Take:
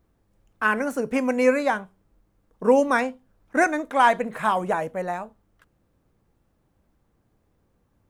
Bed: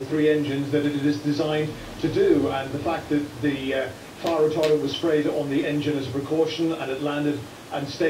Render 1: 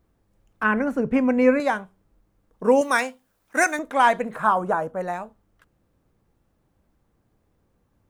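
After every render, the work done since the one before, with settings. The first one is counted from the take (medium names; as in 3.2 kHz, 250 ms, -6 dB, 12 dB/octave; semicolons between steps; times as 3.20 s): 0.63–1.60 s: tone controls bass +10 dB, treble -14 dB; 2.81–3.79 s: tilt EQ +3 dB/octave; 4.36–5.01 s: resonant high shelf 1.7 kHz -6 dB, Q 3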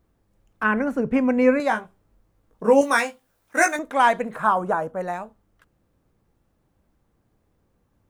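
1.69–3.76 s: doubling 18 ms -4.5 dB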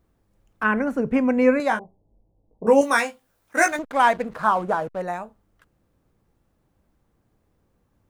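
1.79–2.67 s: steep low-pass 860 Hz 48 dB/octave; 3.57–5.02 s: hysteresis with a dead band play -35 dBFS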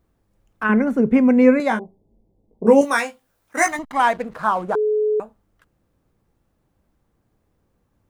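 0.69–2.85 s: small resonant body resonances 220/380/2100/3500 Hz, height 9 dB, ringing for 35 ms; 3.57–4.00 s: comb 1 ms, depth 77%; 4.75–5.20 s: bleep 426 Hz -16 dBFS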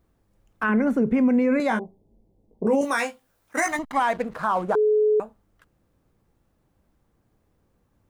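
peak limiter -13.5 dBFS, peak gain reduction 11 dB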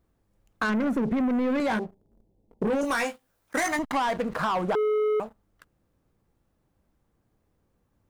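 waveshaping leveller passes 2; compression 3:1, threshold -26 dBFS, peak gain reduction 8 dB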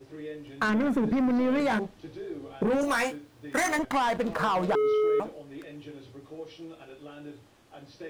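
add bed -19.5 dB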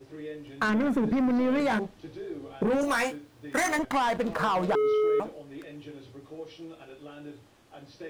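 no audible change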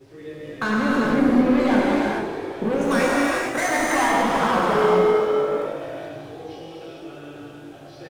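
on a send: frequency-shifting echo 178 ms, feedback 64%, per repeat +50 Hz, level -11 dB; on the sum: gated-style reverb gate 480 ms flat, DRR -6 dB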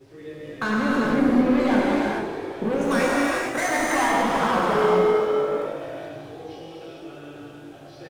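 trim -1.5 dB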